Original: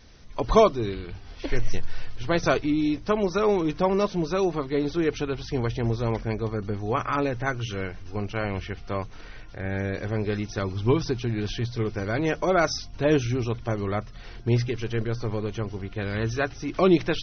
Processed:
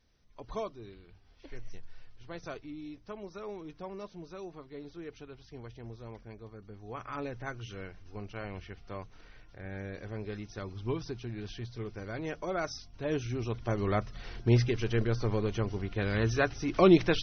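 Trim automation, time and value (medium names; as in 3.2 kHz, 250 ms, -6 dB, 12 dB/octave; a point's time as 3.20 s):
6.67 s -19.5 dB
7.24 s -12 dB
13.05 s -12 dB
13.92 s -1.5 dB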